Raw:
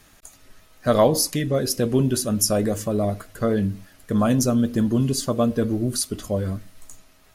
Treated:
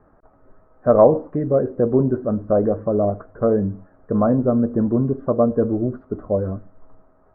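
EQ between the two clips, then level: steep low-pass 1.4 kHz 36 dB/octave; peaking EQ 510 Hz +7 dB 1.6 oct; -1.0 dB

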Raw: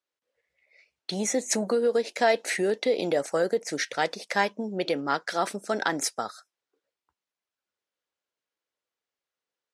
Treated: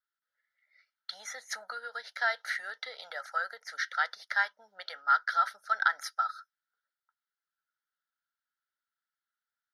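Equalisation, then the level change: resonant high-pass 1.3 kHz, resonance Q 10; static phaser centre 1.7 kHz, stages 8; -6.5 dB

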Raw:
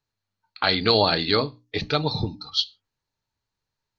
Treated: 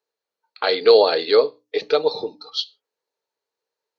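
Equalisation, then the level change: resonant high-pass 460 Hz, resonance Q 4.9; -2.0 dB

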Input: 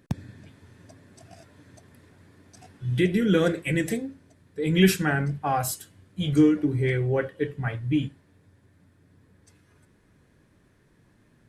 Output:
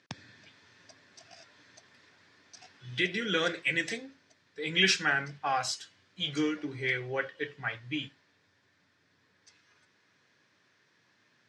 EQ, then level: elliptic band-pass 100–5600 Hz, stop band 50 dB; tilt shelf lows -9 dB; bass shelf 170 Hz -8.5 dB; -2.5 dB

